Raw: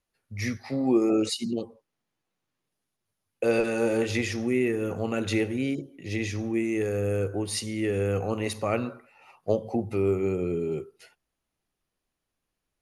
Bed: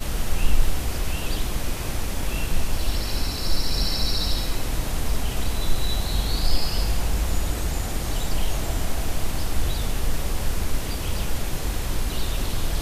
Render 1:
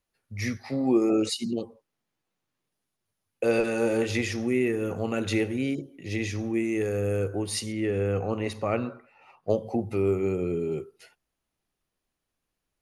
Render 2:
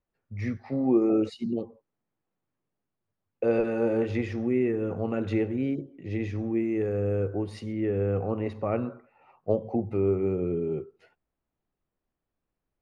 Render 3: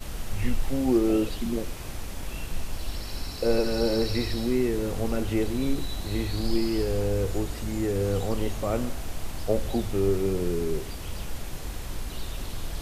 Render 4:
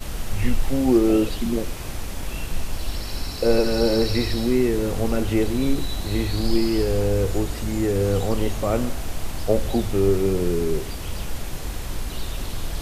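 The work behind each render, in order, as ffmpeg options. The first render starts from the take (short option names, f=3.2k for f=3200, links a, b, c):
-filter_complex "[0:a]asettb=1/sr,asplit=3[a][b][c];[a]atrim=end=7.724[d];[b]atrim=start=7.72:end=9.5,asetpts=PTS-STARTPTS,afade=t=in:d=0.004:c=qsin,afade=t=out:st=1.776:d=0.004:c=qsin,aemphasis=mode=reproduction:type=50kf[e];[c]atrim=start=9.496[f];[d][e]acrossfade=d=0.004:c1=hsin:c2=qsin[g];[g][f]acrossfade=d=0.004:c1=qsin:c2=hsin"
-af "lowpass=f=1.1k:p=1,aemphasis=mode=reproduction:type=cd"
-filter_complex "[1:a]volume=-8.5dB[a];[0:a][a]amix=inputs=2:normalize=0"
-af "volume=5dB"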